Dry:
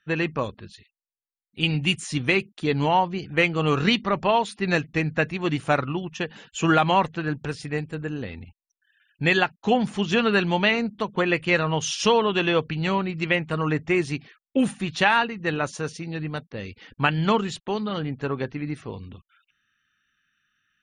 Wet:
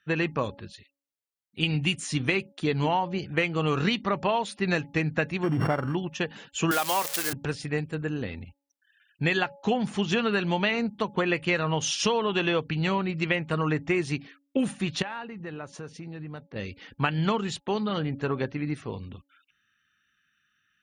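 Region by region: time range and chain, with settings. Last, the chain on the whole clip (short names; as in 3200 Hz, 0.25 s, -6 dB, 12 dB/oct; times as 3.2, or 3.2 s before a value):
5.43–5.95 sample sorter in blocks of 16 samples + polynomial smoothing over 41 samples + backwards sustainer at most 35 dB/s
6.71–7.33 switching spikes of -13 dBFS + HPF 370 Hz
15.02–16.56 high shelf 2900 Hz -10.5 dB + compressor 3:1, threshold -37 dBFS
whole clip: HPF 45 Hz; de-hum 280.7 Hz, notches 3; compressor, threshold -21 dBFS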